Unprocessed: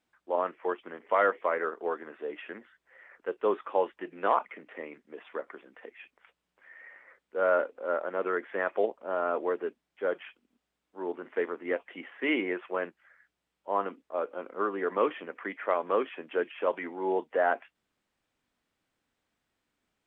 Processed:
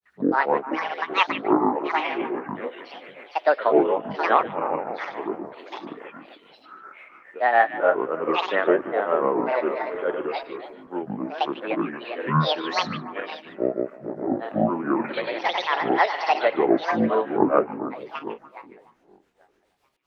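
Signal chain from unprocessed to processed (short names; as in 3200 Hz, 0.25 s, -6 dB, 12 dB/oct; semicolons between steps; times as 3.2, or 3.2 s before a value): regenerating reverse delay 0.203 s, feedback 60%, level -6 dB; grains 0.234 s, grains 7.1/s, pitch spread up and down by 12 st; delay with a stepping band-pass 0.148 s, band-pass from 2500 Hz, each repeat -1.4 oct, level -9.5 dB; gain +8.5 dB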